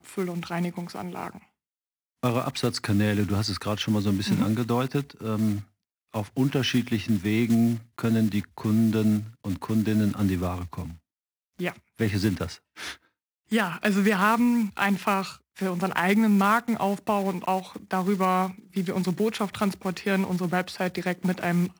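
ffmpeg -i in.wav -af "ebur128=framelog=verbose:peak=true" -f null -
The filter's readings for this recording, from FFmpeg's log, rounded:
Integrated loudness:
  I:         -26.0 LUFS
  Threshold: -36.3 LUFS
Loudness range:
  LRA:         4.7 LU
  Threshold: -46.3 LUFS
  LRA low:   -28.9 LUFS
  LRA high:  -24.2 LUFS
True peak:
  Peak:       -7.3 dBFS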